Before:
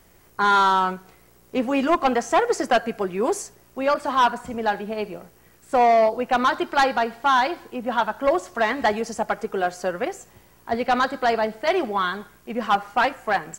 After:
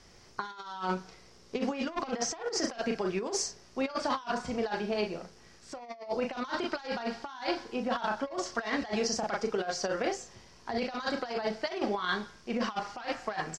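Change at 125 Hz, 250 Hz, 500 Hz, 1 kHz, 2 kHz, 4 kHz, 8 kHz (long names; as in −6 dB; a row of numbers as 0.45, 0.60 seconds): −5.0, −7.0, −10.5, −15.0, −11.0, −6.0, −0.5 decibels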